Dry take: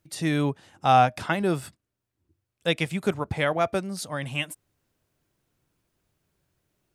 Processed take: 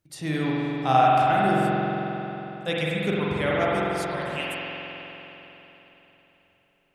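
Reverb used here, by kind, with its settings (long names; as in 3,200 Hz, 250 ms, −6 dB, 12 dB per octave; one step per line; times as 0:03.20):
spring reverb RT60 3.7 s, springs 45 ms, chirp 65 ms, DRR −6 dB
level −5 dB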